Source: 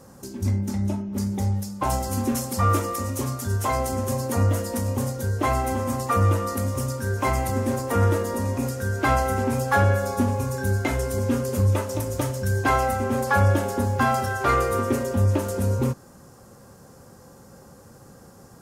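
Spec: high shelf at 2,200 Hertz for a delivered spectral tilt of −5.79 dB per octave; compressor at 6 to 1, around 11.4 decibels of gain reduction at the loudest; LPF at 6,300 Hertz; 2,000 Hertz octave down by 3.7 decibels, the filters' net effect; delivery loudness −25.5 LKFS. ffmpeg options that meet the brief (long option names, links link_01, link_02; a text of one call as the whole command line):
ffmpeg -i in.wav -af "lowpass=6300,equalizer=frequency=2000:width_type=o:gain=-8,highshelf=frequency=2200:gain=6,acompressor=threshold=-28dB:ratio=6,volume=6.5dB" out.wav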